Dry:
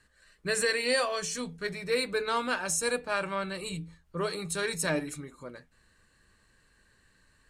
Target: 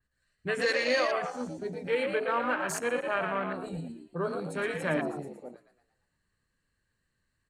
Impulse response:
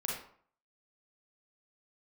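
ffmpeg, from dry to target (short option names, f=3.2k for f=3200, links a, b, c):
-filter_complex "[0:a]asplit=7[a][b][c][d][e][f][g];[b]adelay=115,afreqshift=69,volume=-5dB[h];[c]adelay=230,afreqshift=138,volume=-11.4dB[i];[d]adelay=345,afreqshift=207,volume=-17.8dB[j];[e]adelay=460,afreqshift=276,volume=-24.1dB[k];[f]adelay=575,afreqshift=345,volume=-30.5dB[l];[g]adelay=690,afreqshift=414,volume=-36.9dB[m];[a][h][i][j][k][l][m]amix=inputs=7:normalize=0,acrossover=split=200|480|3300[n][o][p][q];[n]acompressor=mode=upward:threshold=-58dB:ratio=2.5[r];[r][o][p][q]amix=inputs=4:normalize=0,afwtdn=0.0224,adynamicequalizer=threshold=0.00562:dfrequency=3800:dqfactor=0.7:tfrequency=3800:tqfactor=0.7:attack=5:release=100:ratio=0.375:range=3.5:mode=cutabove:tftype=highshelf"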